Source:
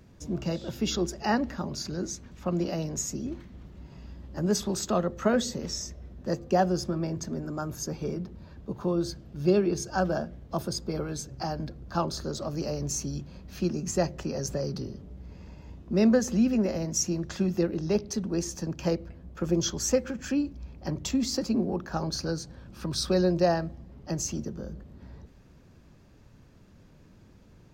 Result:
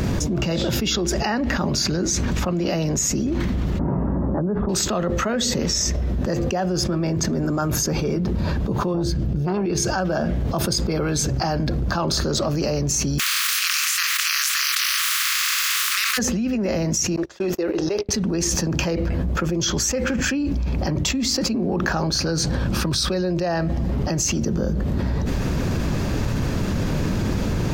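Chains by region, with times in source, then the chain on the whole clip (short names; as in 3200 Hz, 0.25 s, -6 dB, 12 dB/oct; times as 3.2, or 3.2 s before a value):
3.79–4.69 inverse Chebyshev low-pass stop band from 5300 Hz, stop band 70 dB + three-band squash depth 70%
8.94–9.66 low shelf 340 Hz +11.5 dB + core saturation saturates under 550 Hz
13.18–16.17 spectral contrast lowered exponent 0.3 + steep high-pass 1100 Hz 96 dB/oct
17.16–18.09 gate -33 dBFS, range -40 dB + resonant low shelf 270 Hz -11.5 dB, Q 1.5
whole clip: dynamic EQ 2300 Hz, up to +5 dB, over -49 dBFS, Q 1.1; fast leveller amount 100%; gain -6.5 dB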